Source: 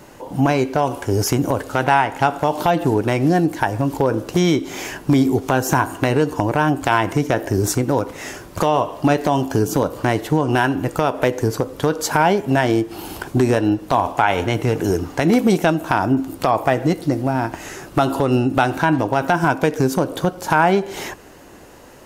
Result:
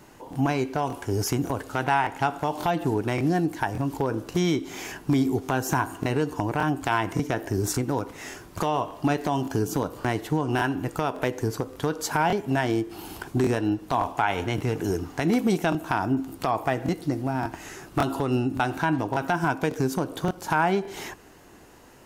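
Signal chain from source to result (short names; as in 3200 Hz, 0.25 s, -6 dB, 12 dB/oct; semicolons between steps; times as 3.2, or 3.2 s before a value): bell 550 Hz -6.5 dB 0.3 oct; crackling interface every 0.57 s, samples 1024, repeat, from 0.31; gain -7 dB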